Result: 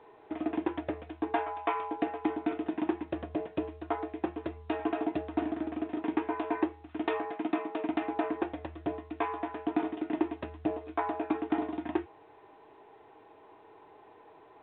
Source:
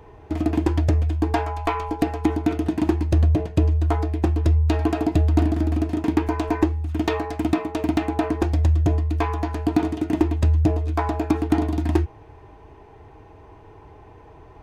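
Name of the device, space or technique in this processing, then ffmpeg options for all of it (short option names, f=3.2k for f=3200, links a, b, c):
telephone: -filter_complex "[0:a]asettb=1/sr,asplit=3[a][b][c];[a]atrim=end=7.314[d];[b]atrim=start=7.31:end=7.89,asetpts=PTS-STARTPTS,afade=t=in:d=0.004:c=qsin,afade=t=out:st=0.576:d=0.004:c=qsin,highpass=f=130:w=0.5412,highpass=f=130:w=1.3066[e];[c]atrim=start=7.886[f];[d][e]acrossfade=d=0.004:c1=hsin:c2=qsin[g];[g][f]acrossfade=d=0.004:c1=qsin:c2=hsin,highpass=340,lowpass=3.1k,volume=-6dB" -ar 8000 -c:a pcm_alaw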